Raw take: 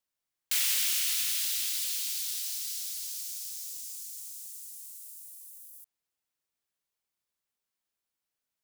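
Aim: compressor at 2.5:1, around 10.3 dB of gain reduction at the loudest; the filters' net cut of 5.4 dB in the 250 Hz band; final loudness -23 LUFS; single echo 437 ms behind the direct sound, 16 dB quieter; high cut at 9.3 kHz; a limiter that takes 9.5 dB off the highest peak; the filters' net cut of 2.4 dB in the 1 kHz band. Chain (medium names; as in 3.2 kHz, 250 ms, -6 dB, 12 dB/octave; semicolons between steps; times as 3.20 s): low-pass 9.3 kHz; peaking EQ 250 Hz -8 dB; peaking EQ 1 kHz -3 dB; compression 2.5:1, threshold -44 dBFS; peak limiter -35 dBFS; delay 437 ms -16 dB; trim +20.5 dB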